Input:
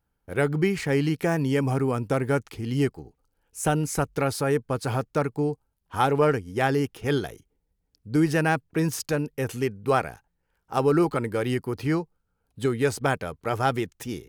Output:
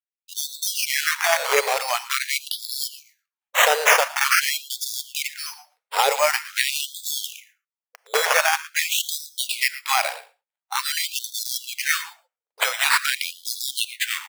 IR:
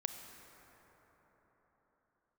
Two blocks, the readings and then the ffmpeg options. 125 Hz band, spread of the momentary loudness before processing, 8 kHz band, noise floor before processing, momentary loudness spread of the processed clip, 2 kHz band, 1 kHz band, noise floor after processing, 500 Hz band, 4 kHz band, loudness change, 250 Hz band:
under -40 dB, 7 LU, +13.5 dB, -76 dBFS, 10 LU, +10.0 dB, +4.0 dB, under -85 dBFS, -3.0 dB, +16.0 dB, +4.0 dB, under -30 dB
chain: -filter_complex "[0:a]bandreject=f=50:t=h:w=6,bandreject=f=100:t=h:w=6,bandreject=f=150:t=h:w=6,bandreject=f=200:t=h:w=6,bandreject=f=250:t=h:w=6,aexciter=amount=13.5:drive=1.7:freq=2.3k,lowpass=4.7k,equalizer=f=3k:w=2.5:g=-11,alimiter=limit=-13dB:level=0:latency=1:release=37,acrusher=samples=9:mix=1:aa=0.000001:lfo=1:lforange=5.4:lforate=0.28,aecho=1:1:114:0.141,agate=range=-33dB:threshold=-46dB:ratio=3:detection=peak,asplit=2[a][b];[1:a]atrim=start_sample=2205,atrim=end_sample=6174[c];[b][c]afir=irnorm=-1:irlink=0,volume=1dB[d];[a][d]amix=inputs=2:normalize=0,afftfilt=real='re*gte(b*sr/1024,400*pow(3400/400,0.5+0.5*sin(2*PI*0.46*pts/sr)))':imag='im*gte(b*sr/1024,400*pow(3400/400,0.5+0.5*sin(2*PI*0.46*pts/sr)))':win_size=1024:overlap=0.75,volume=3dB"

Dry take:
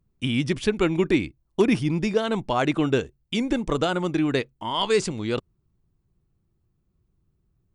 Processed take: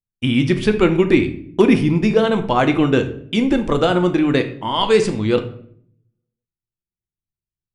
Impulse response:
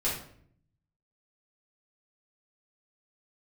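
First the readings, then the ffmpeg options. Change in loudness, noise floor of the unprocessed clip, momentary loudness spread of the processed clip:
+7.5 dB, -71 dBFS, 6 LU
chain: -filter_complex "[0:a]agate=range=-33dB:threshold=-37dB:ratio=3:detection=peak,equalizer=f=7.2k:t=o:w=1.5:g=-6.5,asplit=2[a][b];[1:a]atrim=start_sample=2205[c];[b][c]afir=irnorm=-1:irlink=0,volume=-11.5dB[d];[a][d]amix=inputs=2:normalize=0,volume=4.5dB"

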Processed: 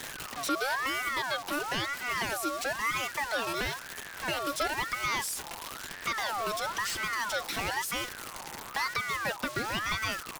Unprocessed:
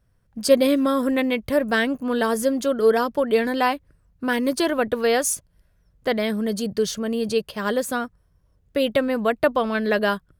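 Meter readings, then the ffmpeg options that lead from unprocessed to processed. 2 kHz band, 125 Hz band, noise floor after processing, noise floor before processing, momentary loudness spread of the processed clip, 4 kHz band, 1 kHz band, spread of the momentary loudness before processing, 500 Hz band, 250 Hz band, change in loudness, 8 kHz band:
-3.0 dB, -6.0 dB, -44 dBFS, -63 dBFS, 7 LU, -3.0 dB, -5.0 dB, 8 LU, -17.5 dB, -18.5 dB, -9.5 dB, -5.0 dB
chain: -filter_complex "[0:a]aeval=exprs='val(0)+0.5*0.0447*sgn(val(0))':c=same,acrossover=split=2600[a][b];[b]acompressor=threshold=-35dB:ratio=4:attack=1:release=60[c];[a][c]amix=inputs=2:normalize=0,highshelf=f=3.4k:g=9.5,aecho=1:1:5.9:0.37,acrossover=split=340|3000[d][e][f];[e]acompressor=threshold=-27dB:ratio=6[g];[d][g][f]amix=inputs=3:normalize=0,asplit=2[h][i];[i]highpass=f=720:p=1,volume=10dB,asoftclip=type=tanh:threshold=-11.5dB[j];[h][j]amix=inputs=2:normalize=0,lowpass=f=6.3k:p=1,volume=-6dB,acrossover=split=240|2700[k][l][m];[m]aeval=exprs='(mod(7.94*val(0)+1,2)-1)/7.94':c=same[n];[k][l][n]amix=inputs=3:normalize=0,aeval=exprs='val(0)*sin(2*PI*1300*n/s+1300*0.35/1*sin(2*PI*1*n/s))':c=same,volume=-5.5dB"

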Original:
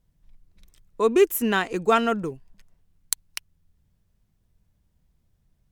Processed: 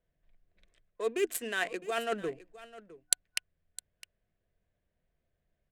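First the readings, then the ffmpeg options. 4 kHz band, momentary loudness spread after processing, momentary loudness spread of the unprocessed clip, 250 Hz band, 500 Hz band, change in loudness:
-4.5 dB, 20 LU, 15 LU, -15.5 dB, -11.5 dB, -10.0 dB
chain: -filter_complex "[0:a]bandreject=f=60:t=h:w=6,bandreject=f=120:t=h:w=6,bandreject=f=180:t=h:w=6,bandreject=f=240:t=h:w=6,bandreject=f=300:t=h:w=6,adynamicsmooth=sensitivity=6.5:basefreq=2.1k,acrossover=split=450 7100:gain=0.141 1 0.0631[a][b][c];[a][b][c]amix=inputs=3:normalize=0,areverse,acompressor=threshold=-30dB:ratio=6,areverse,aexciter=amount=9.4:drive=3.2:freq=7.9k,superequalizer=9b=0.282:10b=0.398,aecho=1:1:659:0.133,volume=3dB"

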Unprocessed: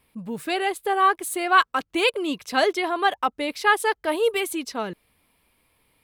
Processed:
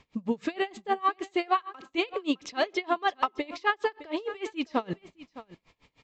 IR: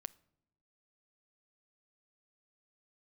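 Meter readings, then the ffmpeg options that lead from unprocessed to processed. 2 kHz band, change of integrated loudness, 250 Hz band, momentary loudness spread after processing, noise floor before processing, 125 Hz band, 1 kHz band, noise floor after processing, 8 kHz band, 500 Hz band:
-9.5 dB, -7.5 dB, -2.0 dB, 10 LU, -72 dBFS, n/a, -7.0 dB, -75 dBFS, -16.5 dB, -7.0 dB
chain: -filter_complex "[0:a]acrossover=split=4400[a][b];[b]acompressor=threshold=-43dB:ratio=4:attack=1:release=60[c];[a][c]amix=inputs=2:normalize=0,bandreject=f=1.5k:w=9,acompressor=threshold=-29dB:ratio=5,acrusher=bits=11:mix=0:aa=0.000001,aecho=1:1:611:0.15,asplit=2[d][e];[1:a]atrim=start_sample=2205[f];[e][f]afir=irnorm=-1:irlink=0,volume=17dB[g];[d][g]amix=inputs=2:normalize=0,aresample=16000,aresample=44100,aeval=exprs='val(0)*pow(10,-27*(0.5-0.5*cos(2*PI*6.5*n/s))/20)':c=same,volume=-6dB"

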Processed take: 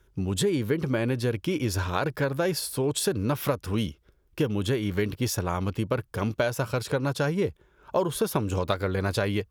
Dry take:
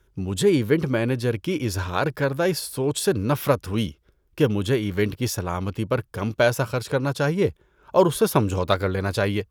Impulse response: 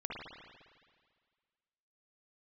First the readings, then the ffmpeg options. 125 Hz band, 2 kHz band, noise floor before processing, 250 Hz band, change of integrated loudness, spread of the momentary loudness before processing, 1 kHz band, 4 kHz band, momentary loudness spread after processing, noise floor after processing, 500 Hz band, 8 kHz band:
-3.5 dB, -4.5 dB, -63 dBFS, -4.0 dB, -4.0 dB, 6 LU, -4.5 dB, -2.5 dB, 4 LU, -63 dBFS, -5.0 dB, -1.5 dB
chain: -af "acompressor=threshold=-22dB:ratio=5"

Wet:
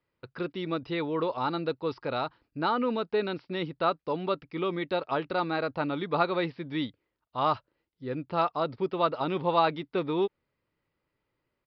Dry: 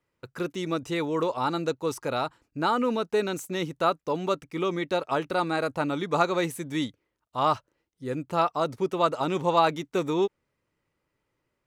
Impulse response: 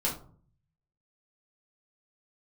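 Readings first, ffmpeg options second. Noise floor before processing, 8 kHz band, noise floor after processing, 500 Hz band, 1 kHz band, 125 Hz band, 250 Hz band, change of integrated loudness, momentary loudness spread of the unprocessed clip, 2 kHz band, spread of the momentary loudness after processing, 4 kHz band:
-80 dBFS, under -30 dB, -83 dBFS, -2.5 dB, -2.5 dB, -2.5 dB, -2.5 dB, -2.5 dB, 7 LU, -2.5 dB, 8 LU, -2.5 dB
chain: -af "aresample=11025,aresample=44100,volume=-2.5dB"

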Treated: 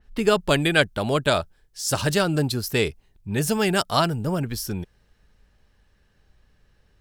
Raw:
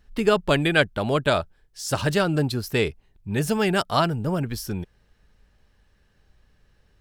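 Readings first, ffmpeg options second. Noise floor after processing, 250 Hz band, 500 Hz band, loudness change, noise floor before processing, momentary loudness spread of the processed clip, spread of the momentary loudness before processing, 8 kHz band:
-63 dBFS, 0.0 dB, 0.0 dB, +0.5 dB, -63 dBFS, 10 LU, 12 LU, +5.5 dB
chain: -af "adynamicequalizer=threshold=0.0112:dfrequency=4000:dqfactor=0.7:tfrequency=4000:tqfactor=0.7:attack=5:release=100:ratio=0.375:range=3.5:mode=boostabove:tftype=highshelf"

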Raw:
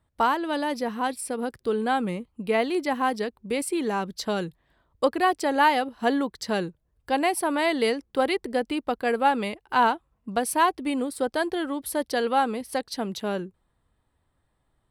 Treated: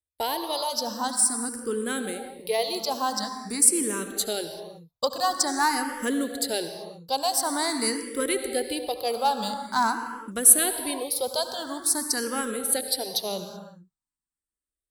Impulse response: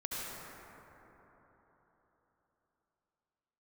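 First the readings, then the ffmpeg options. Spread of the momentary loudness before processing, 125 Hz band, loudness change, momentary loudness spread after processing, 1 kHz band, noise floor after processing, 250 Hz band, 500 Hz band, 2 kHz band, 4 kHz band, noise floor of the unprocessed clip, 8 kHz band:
8 LU, -6.5 dB, +1.0 dB, 13 LU, -3.5 dB, under -85 dBFS, -4.0 dB, -3.5 dB, -4.0 dB, +5.0 dB, -73 dBFS, +15.5 dB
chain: -filter_complex "[0:a]acontrast=80,agate=range=-24dB:threshold=-38dB:ratio=16:detection=peak,aexciter=amount=7:drive=5:freq=3.8k,asplit=2[a][b];[1:a]atrim=start_sample=2205,afade=t=out:st=0.44:d=0.01,atrim=end_sample=19845[c];[b][c]afir=irnorm=-1:irlink=0,volume=-6dB[d];[a][d]amix=inputs=2:normalize=0,asplit=2[e][f];[f]afreqshift=0.47[g];[e][g]amix=inputs=2:normalize=1,volume=-10.5dB"

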